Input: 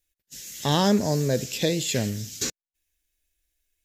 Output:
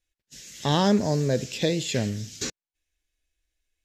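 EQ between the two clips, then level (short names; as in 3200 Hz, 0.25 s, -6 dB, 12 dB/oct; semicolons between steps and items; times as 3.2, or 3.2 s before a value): air absorption 59 m; 0.0 dB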